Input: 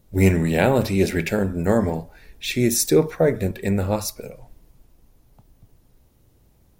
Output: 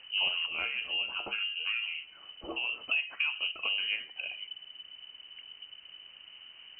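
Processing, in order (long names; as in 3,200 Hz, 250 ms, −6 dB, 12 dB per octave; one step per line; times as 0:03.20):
0:00.46–0:02.69: tuned comb filter 65 Hz, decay 0.21 s, harmonics odd, mix 80%
background noise pink −61 dBFS
voice inversion scrambler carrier 3,000 Hz
downward compressor 3 to 1, threshold −31 dBFS, peak gain reduction 15 dB
one half of a high-frequency compander encoder only
level −1.5 dB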